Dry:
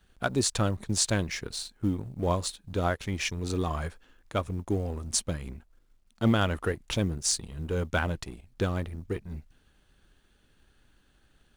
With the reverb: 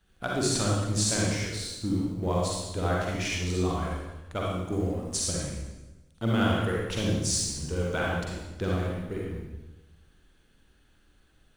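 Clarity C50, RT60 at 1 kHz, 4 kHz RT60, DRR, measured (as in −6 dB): −2.5 dB, 1.0 s, 1.0 s, −4.0 dB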